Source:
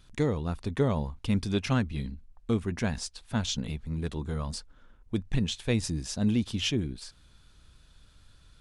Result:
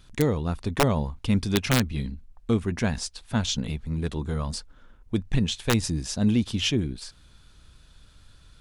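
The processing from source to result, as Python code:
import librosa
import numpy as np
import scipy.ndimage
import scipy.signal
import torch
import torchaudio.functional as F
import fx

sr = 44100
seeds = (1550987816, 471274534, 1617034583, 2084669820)

y = (np.mod(10.0 ** (15.5 / 20.0) * x + 1.0, 2.0) - 1.0) / 10.0 ** (15.5 / 20.0)
y = F.gain(torch.from_numpy(y), 4.0).numpy()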